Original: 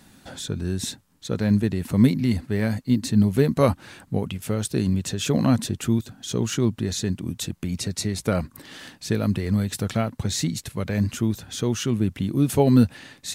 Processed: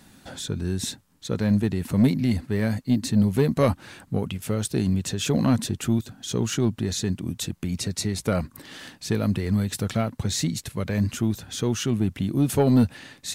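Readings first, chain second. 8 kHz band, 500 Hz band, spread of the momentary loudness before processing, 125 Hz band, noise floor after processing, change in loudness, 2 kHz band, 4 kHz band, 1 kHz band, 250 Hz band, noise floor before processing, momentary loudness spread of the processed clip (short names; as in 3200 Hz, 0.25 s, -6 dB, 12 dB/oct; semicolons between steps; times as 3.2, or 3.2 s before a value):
0.0 dB, -1.5 dB, 11 LU, -1.0 dB, -54 dBFS, -1.0 dB, -0.5 dB, 0.0 dB, -1.5 dB, -1.0 dB, -54 dBFS, 9 LU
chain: soft clip -10.5 dBFS, distortion -19 dB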